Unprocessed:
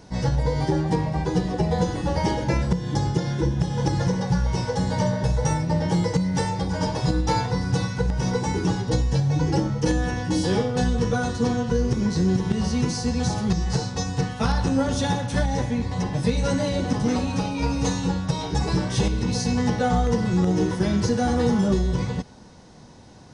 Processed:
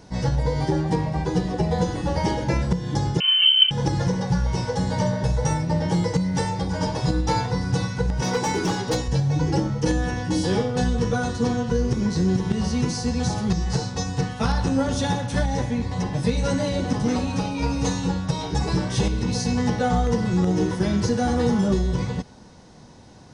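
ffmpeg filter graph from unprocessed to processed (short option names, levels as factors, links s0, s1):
-filter_complex "[0:a]asettb=1/sr,asplit=3[s0][s1][s2];[s0]atrim=end=3.204[s3];[s1]atrim=start=3.2:end=3.71,asetpts=PTS-STARTPTS,afade=t=in:d=0.004:c=qsin,afade=t=out:st=0.506:d=0.004:c=qsin,equalizer=f=120:t=o:w=1:g=9.5,lowpass=f=2700:t=q:w=0.5098,lowpass=f=2700:t=q:w=0.6013,lowpass=f=2700:t=q:w=0.9,lowpass=f=2700:t=q:w=2.563,afreqshift=-3200[s4];[s2]atrim=start=3.706[s5];[s3][s4]acrossfade=d=0.004:c1=hsin:c2=qsin[s6];[s6][s5]acrossfade=d=0.004:c1=qsin:c2=hsin,asettb=1/sr,asplit=3[s7][s8][s9];[s7]atrim=end=8.224[s10];[s8]atrim=start=8.22:end=9.08,asetpts=PTS-STARTPTS,afade=t=in:d=0.004:c=qsin,afade=t=out:st=0.856:d=0.004:c=qsin,highpass=f=370:p=1,acontrast=43,asoftclip=type=hard:threshold=0.133[s11];[s9]atrim=start=9.076[s12];[s10][s11]acrossfade=d=0.004:c1=hsin:c2=qsin[s13];[s13][s12]acrossfade=d=0.004:c1=qsin:c2=hsin"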